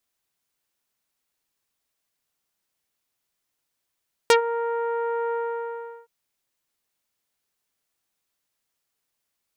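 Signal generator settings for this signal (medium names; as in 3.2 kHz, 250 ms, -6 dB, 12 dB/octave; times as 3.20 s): synth note saw A#4 24 dB/octave, low-pass 1.4 kHz, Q 0.91, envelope 3.5 oct, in 0.07 s, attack 1 ms, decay 0.11 s, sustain -13 dB, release 0.75 s, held 1.02 s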